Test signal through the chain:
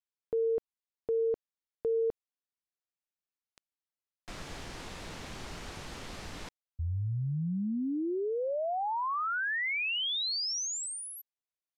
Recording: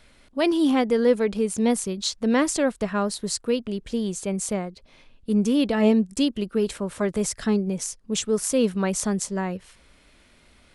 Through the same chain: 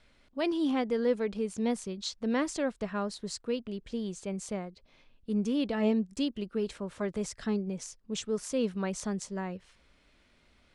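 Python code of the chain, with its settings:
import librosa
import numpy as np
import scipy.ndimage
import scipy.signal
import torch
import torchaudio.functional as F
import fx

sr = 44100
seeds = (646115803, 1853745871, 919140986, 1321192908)

y = scipy.signal.sosfilt(scipy.signal.butter(2, 6600.0, 'lowpass', fs=sr, output='sos'), x)
y = y * librosa.db_to_amplitude(-8.5)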